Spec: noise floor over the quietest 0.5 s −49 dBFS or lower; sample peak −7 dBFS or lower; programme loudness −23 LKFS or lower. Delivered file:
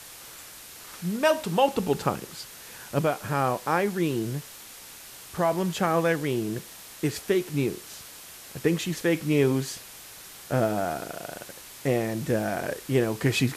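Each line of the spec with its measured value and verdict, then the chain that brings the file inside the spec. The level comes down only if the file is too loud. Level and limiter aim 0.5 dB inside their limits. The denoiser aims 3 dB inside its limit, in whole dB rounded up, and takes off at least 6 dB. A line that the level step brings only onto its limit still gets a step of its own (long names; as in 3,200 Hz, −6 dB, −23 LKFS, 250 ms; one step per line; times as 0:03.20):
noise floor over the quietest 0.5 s −45 dBFS: out of spec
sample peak −9.0 dBFS: in spec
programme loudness −27.0 LKFS: in spec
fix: broadband denoise 7 dB, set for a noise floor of −45 dBFS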